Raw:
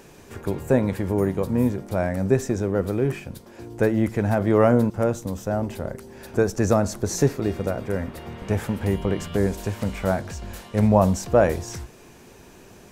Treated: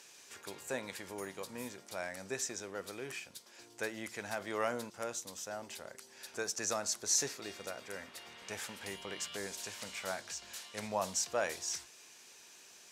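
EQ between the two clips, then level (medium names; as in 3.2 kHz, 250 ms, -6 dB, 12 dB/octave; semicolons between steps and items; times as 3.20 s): band-pass filter 5.6 kHz, Q 0.83; +1.0 dB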